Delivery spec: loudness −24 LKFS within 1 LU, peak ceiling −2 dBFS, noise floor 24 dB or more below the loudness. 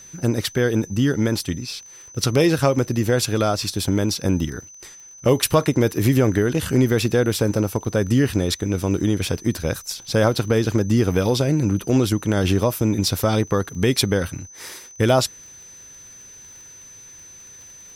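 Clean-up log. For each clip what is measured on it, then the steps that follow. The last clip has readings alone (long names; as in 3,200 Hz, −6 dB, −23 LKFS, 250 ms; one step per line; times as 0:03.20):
crackle rate 26 per second; interfering tone 6,100 Hz; level of the tone −41 dBFS; integrated loudness −20.5 LKFS; sample peak −4.0 dBFS; target loudness −24.0 LKFS
→ click removal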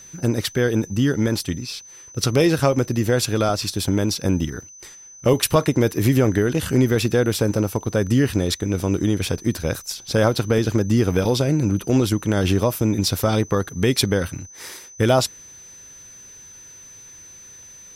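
crackle rate 0.45 per second; interfering tone 6,100 Hz; level of the tone −41 dBFS
→ notch filter 6,100 Hz, Q 30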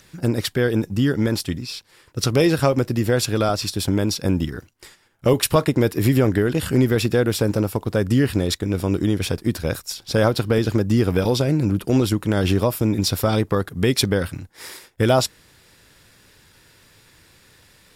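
interfering tone none found; integrated loudness −20.5 LKFS; sample peak −4.0 dBFS; target loudness −24.0 LKFS
→ level −3.5 dB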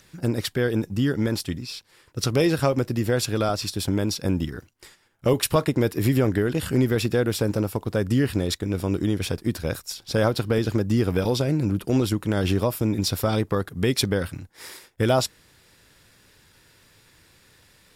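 integrated loudness −24.0 LKFS; sample peak −7.5 dBFS; background noise floor −58 dBFS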